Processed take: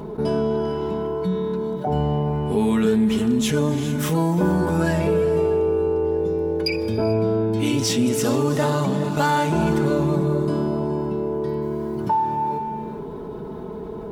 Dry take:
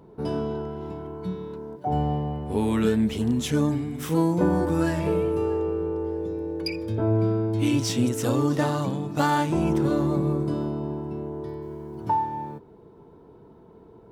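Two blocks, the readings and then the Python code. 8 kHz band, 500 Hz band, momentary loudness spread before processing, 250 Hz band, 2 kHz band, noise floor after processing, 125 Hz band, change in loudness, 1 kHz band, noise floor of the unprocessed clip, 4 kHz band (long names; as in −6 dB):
+6.0 dB, +6.0 dB, 11 LU, +3.5 dB, +5.5 dB, −32 dBFS, +3.0 dB, +4.0 dB, +4.0 dB, −51 dBFS, +5.5 dB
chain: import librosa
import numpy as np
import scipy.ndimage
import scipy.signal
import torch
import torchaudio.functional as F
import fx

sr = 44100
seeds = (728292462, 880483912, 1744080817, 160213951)

y = x + 0.51 * np.pad(x, (int(4.8 * sr / 1000.0), 0))[:len(x)]
y = fx.rev_gated(y, sr, seeds[0], gate_ms=470, shape='rising', drr_db=10.5)
y = fx.env_flatten(y, sr, amount_pct=50)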